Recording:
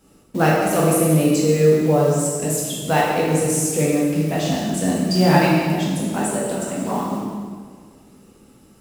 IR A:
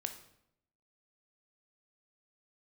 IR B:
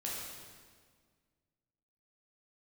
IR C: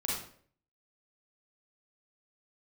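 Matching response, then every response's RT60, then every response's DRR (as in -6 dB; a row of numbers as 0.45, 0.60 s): B; 0.75, 1.7, 0.55 s; 6.0, -5.5, -4.5 dB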